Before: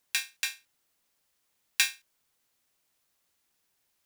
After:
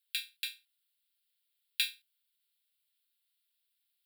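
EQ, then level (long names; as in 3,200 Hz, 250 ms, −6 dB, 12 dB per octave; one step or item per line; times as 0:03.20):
Chebyshev high-pass with heavy ripple 980 Hz, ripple 9 dB
high-shelf EQ 3,700 Hz +10.5 dB
phaser with its sweep stopped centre 2,700 Hz, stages 4
−4.5 dB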